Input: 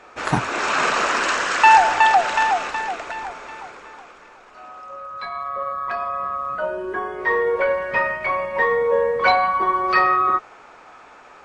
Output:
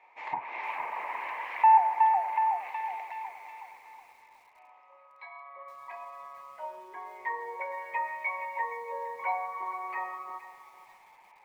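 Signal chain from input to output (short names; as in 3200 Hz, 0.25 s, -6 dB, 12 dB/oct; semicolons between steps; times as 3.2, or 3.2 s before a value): treble ducked by the level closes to 1400 Hz, closed at -15.5 dBFS; double band-pass 1400 Hz, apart 1.2 oct; lo-fi delay 0.467 s, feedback 35%, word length 8-bit, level -13.5 dB; gain -4.5 dB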